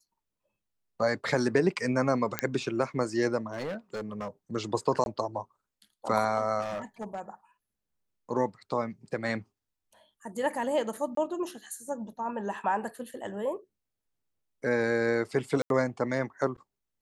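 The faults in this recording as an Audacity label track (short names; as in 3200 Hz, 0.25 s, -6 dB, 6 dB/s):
2.390000	2.390000	pop -10 dBFS
3.520000	4.280000	clipped -30.5 dBFS
5.040000	5.060000	gap 21 ms
6.610000	7.200000	clipped -30 dBFS
11.150000	11.170000	gap 23 ms
15.620000	15.700000	gap 82 ms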